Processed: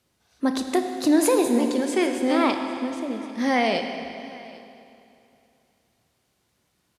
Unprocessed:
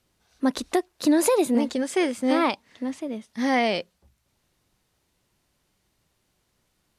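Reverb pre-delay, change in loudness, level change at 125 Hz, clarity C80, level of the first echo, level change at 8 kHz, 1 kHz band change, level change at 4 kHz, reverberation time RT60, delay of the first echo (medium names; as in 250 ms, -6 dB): 23 ms, +1.0 dB, +1.0 dB, 6.5 dB, -22.5 dB, +1.0 dB, +1.5 dB, +1.0 dB, 2.9 s, 796 ms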